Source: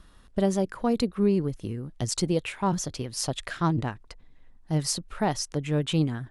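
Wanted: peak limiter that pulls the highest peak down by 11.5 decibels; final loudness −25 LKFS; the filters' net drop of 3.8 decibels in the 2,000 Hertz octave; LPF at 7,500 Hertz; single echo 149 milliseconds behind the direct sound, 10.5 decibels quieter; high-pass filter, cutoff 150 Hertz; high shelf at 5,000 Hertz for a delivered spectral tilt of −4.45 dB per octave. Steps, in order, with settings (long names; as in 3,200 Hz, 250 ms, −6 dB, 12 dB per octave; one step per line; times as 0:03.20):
high-pass filter 150 Hz
low-pass filter 7,500 Hz
parametric band 2,000 Hz −5.5 dB
high-shelf EQ 5,000 Hz +3 dB
brickwall limiter −25 dBFS
single-tap delay 149 ms −10.5 dB
level +10 dB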